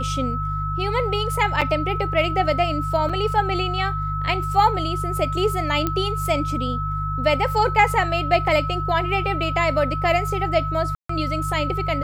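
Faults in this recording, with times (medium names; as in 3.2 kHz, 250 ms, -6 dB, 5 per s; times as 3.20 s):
hum 50 Hz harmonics 3 -27 dBFS
whine 1.3 kHz -26 dBFS
1.61–1.62 s: dropout 6.6 ms
3.09–3.10 s: dropout 5.1 ms
5.87 s: pop -9 dBFS
10.95–11.09 s: dropout 144 ms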